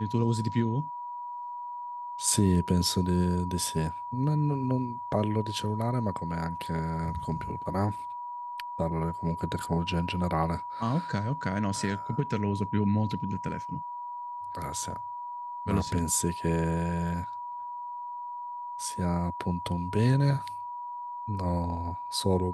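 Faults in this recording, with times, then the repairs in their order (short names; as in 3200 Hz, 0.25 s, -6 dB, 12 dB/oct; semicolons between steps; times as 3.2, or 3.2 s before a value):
tone 970 Hz -35 dBFS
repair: notch 970 Hz, Q 30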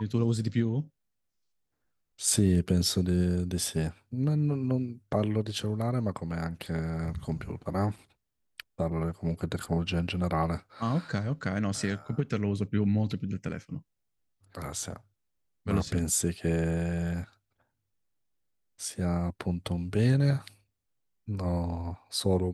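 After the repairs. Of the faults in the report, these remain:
none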